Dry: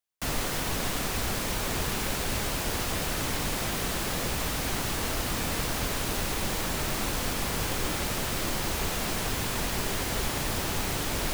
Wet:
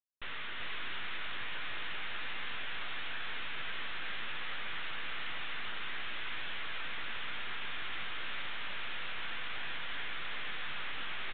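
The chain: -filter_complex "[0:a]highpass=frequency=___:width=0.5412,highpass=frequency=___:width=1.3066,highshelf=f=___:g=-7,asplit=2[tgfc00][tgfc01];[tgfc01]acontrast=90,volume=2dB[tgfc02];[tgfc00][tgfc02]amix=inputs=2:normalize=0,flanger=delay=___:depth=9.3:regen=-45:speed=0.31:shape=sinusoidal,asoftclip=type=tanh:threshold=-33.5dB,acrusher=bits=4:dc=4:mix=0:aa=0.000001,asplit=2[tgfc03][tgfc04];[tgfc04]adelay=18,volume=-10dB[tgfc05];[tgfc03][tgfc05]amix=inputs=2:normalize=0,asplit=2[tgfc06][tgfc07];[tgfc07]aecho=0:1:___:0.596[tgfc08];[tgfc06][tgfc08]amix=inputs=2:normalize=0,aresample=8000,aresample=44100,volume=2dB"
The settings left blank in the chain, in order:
1.4k, 1.4k, 3.1k, 1.2, 388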